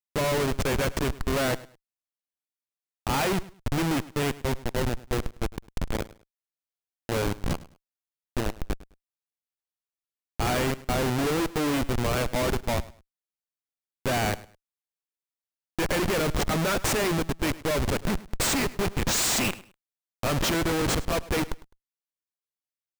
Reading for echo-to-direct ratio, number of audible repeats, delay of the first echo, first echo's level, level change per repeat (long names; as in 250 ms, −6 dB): −19.0 dB, 2, 104 ms, −19.0 dB, −12.5 dB